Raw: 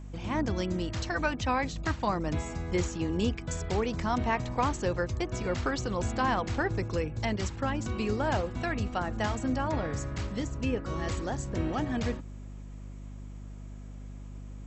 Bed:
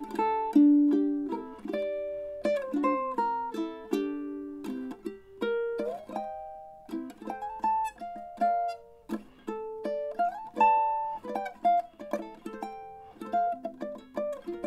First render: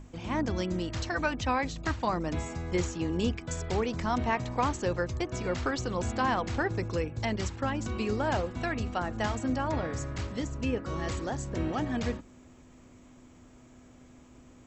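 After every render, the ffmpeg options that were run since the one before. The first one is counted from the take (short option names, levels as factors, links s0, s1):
-af "bandreject=f=50:t=h:w=6,bandreject=f=100:t=h:w=6,bandreject=f=150:t=h:w=6,bandreject=f=200:t=h:w=6"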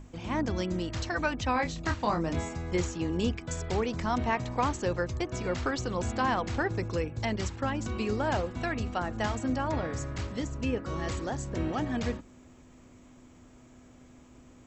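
-filter_complex "[0:a]asettb=1/sr,asplit=3[s0][s1][s2];[s0]atrim=end=1.534[s3];[s1]atrim=start=1.53:end=2.49,asetpts=PTS-STARTPTS,afade=t=in:d=0.004:c=qsin,afade=t=out:st=0.956:d=0.004:c=qsin,asplit=2[s4][s5];[s5]adelay=24,volume=0.531[s6];[s4][s6]amix=inputs=2:normalize=0,atrim=end_sample=42336[s7];[s2]atrim=start=2.486[s8];[s3][s7]acrossfade=d=0.004:c1=hsin:c2=qsin[s9];[s9][s8]acrossfade=d=0.004:c1=qsin:c2=hsin"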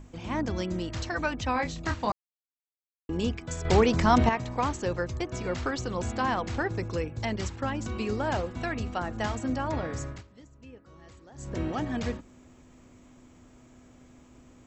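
-filter_complex "[0:a]asplit=7[s0][s1][s2][s3][s4][s5][s6];[s0]atrim=end=2.12,asetpts=PTS-STARTPTS,afade=t=out:st=2.116:d=0.004:c=hsin[s7];[s1]atrim=start=2.12:end=3.09,asetpts=PTS-STARTPTS,volume=0[s8];[s2]atrim=start=3.09:end=3.652,asetpts=PTS-STARTPTS,afade=t=in:d=0.004:c=hsin[s9];[s3]atrim=start=3.648:end=4.292,asetpts=PTS-STARTPTS,volume=2.66[s10];[s4]atrim=start=4.288:end=10.23,asetpts=PTS-STARTPTS,afade=t=out:st=5.792:d=0.15:silence=0.11885[s11];[s5]atrim=start=10.23:end=11.34,asetpts=PTS-STARTPTS,volume=0.119[s12];[s6]atrim=start=11.34,asetpts=PTS-STARTPTS,afade=t=in:d=0.15:silence=0.11885[s13];[s7][s8][s9]concat=n=3:v=0:a=1[s14];[s14][s10]acrossfade=d=0.004:c1=hsin:c2=hsin[s15];[s11][s12][s13]concat=n=3:v=0:a=1[s16];[s15][s16]acrossfade=d=0.004:c1=hsin:c2=hsin"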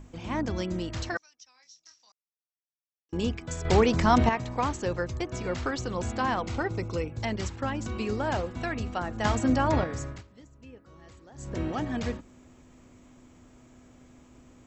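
-filter_complex "[0:a]asettb=1/sr,asplit=3[s0][s1][s2];[s0]atrim=end=1.174[s3];[s1]atrim=start=1.17:end=3.13,asetpts=PTS-STARTPTS,afade=t=in:d=0.004:c=qsin,afade=t=out:st=1.956:d=0.004:c=qsin,bandpass=f=5600:t=q:w=12[s4];[s2]atrim=start=3.126[s5];[s3][s4]acrossfade=d=0.004:c1=hsin:c2=qsin[s6];[s6][s5]acrossfade=d=0.004:c1=qsin:c2=hsin,asettb=1/sr,asplit=3[s7][s8][s9];[s7]atrim=end=6.424[s10];[s8]atrim=start=6.42:end=7.12,asetpts=PTS-STARTPTS,afade=t=in:d=0.004:c=qsin,afade=t=out:st=0.696:d=0.004:c=qsin,asuperstop=centerf=1700:order=4:qfactor=7.4[s11];[s9]atrim=start=7.116[s12];[s10][s11]acrossfade=d=0.004:c1=hsin:c2=qsin[s13];[s13][s12]acrossfade=d=0.004:c1=qsin:c2=hsin,asplit=3[s14][s15][s16];[s14]atrim=end=9.252[s17];[s15]atrim=start=9.248:end=9.842,asetpts=PTS-STARTPTS,volume=2[s18];[s16]atrim=start=9.838[s19];[s17][s18]acrossfade=d=0.004:c1=hsin:c2=hsin[s20];[s20][s19]acrossfade=d=0.004:c1=hsin:c2=hsin"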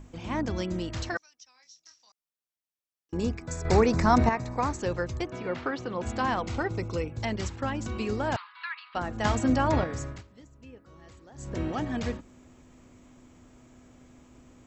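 -filter_complex "[0:a]asettb=1/sr,asplit=3[s0][s1][s2];[s0]atrim=end=3.144[s3];[s1]atrim=start=3.14:end=4.79,asetpts=PTS-STARTPTS,afade=t=in:d=0.004:c=qsin,afade=t=out:st=1.646:d=0.004:c=qsin,equalizer=f=3100:w=4.5:g=-14.5[s4];[s2]atrim=start=4.786[s5];[s3][s4]acrossfade=d=0.004:c1=hsin:c2=qsin[s6];[s6][s5]acrossfade=d=0.004:c1=qsin:c2=hsin,asplit=3[s7][s8][s9];[s7]afade=t=out:st=5.3:d=0.02[s10];[s8]highpass=160,lowpass=3200,afade=t=in:st=5.3:d=0.02,afade=t=out:st=6.05:d=0.02[s11];[s9]afade=t=in:st=6.05:d=0.02[s12];[s10][s11][s12]amix=inputs=3:normalize=0,asettb=1/sr,asplit=3[s13][s14][s15];[s13]atrim=end=8.364[s16];[s14]atrim=start=8.36:end=8.95,asetpts=PTS-STARTPTS,afade=t=in:d=0.004:c=qsin,afade=t=out:st=0.586:d=0.004:c=qsin,asuperpass=centerf=2100:order=20:qfactor=0.57[s17];[s15]atrim=start=8.946[s18];[s16][s17]acrossfade=d=0.004:c1=hsin:c2=qsin[s19];[s19][s18]acrossfade=d=0.004:c1=qsin:c2=hsin"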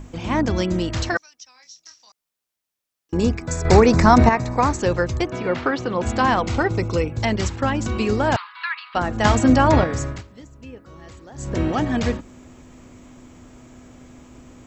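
-af "volume=2.99,alimiter=limit=0.794:level=0:latency=1"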